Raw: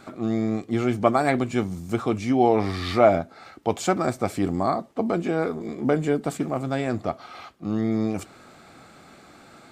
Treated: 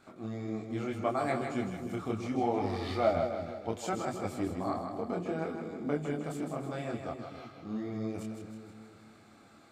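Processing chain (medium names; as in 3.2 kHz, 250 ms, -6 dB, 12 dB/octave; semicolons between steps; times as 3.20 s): chorus voices 2, 0.71 Hz, delay 24 ms, depth 4.2 ms; two-band feedback delay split 460 Hz, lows 258 ms, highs 158 ms, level -6 dB; trim -8.5 dB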